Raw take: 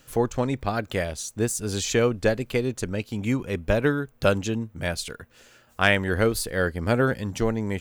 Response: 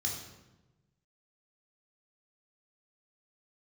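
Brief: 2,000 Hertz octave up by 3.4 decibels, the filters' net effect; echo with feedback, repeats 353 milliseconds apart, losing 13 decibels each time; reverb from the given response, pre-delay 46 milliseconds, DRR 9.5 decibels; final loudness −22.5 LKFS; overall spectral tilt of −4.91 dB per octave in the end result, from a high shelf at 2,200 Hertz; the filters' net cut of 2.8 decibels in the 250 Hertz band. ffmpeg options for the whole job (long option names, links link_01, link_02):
-filter_complex "[0:a]equalizer=frequency=250:width_type=o:gain=-3.5,equalizer=frequency=2000:width_type=o:gain=8.5,highshelf=frequency=2200:gain=-8,aecho=1:1:353|706|1059:0.224|0.0493|0.0108,asplit=2[link_01][link_02];[1:a]atrim=start_sample=2205,adelay=46[link_03];[link_02][link_03]afir=irnorm=-1:irlink=0,volume=-12dB[link_04];[link_01][link_04]amix=inputs=2:normalize=0,volume=2dB"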